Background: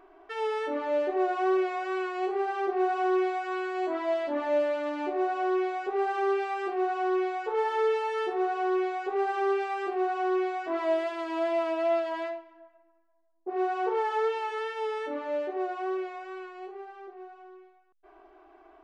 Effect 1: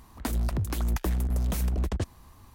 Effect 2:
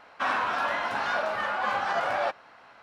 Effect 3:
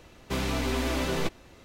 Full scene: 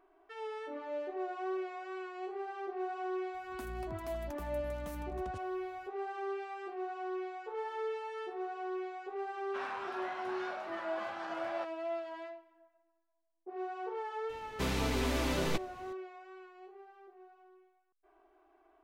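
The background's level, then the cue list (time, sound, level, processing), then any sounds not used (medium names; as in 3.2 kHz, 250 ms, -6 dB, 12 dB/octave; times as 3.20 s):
background -11.5 dB
3.34 s: add 1 -17.5 dB
9.34 s: add 2 -15 dB
14.29 s: add 3 -4 dB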